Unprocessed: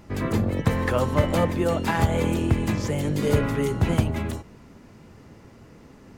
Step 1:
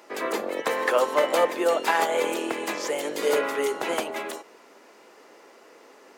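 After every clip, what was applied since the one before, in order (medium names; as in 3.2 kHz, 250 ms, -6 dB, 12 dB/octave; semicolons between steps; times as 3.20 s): high-pass 400 Hz 24 dB/octave; trim +3.5 dB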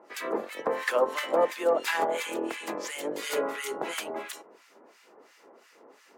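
harmonic tremolo 2.9 Hz, depth 100%, crossover 1.3 kHz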